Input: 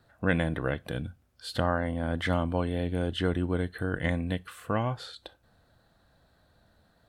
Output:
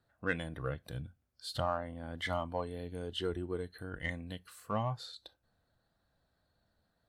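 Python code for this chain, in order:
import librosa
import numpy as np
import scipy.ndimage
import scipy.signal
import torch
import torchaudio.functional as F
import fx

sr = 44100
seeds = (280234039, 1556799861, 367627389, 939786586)

p1 = fx.noise_reduce_blind(x, sr, reduce_db=10)
p2 = 10.0 ** (-29.0 / 20.0) * np.tanh(p1 / 10.0 ** (-29.0 / 20.0))
p3 = p1 + F.gain(torch.from_numpy(p2), -11.0).numpy()
y = F.gain(torch.from_numpy(p3), -5.0).numpy()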